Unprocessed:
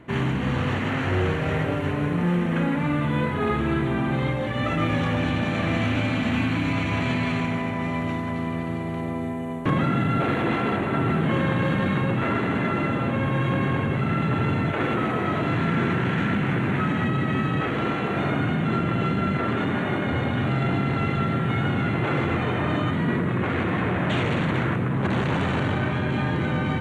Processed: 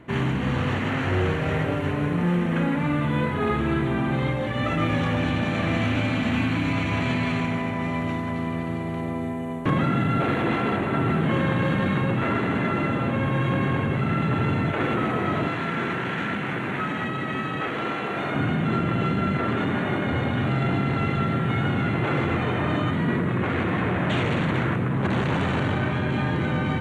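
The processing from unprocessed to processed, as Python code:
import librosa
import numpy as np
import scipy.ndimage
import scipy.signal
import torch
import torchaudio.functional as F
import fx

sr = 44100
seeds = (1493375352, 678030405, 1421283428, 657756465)

y = fx.low_shelf(x, sr, hz=220.0, db=-12.0, at=(15.48, 18.35))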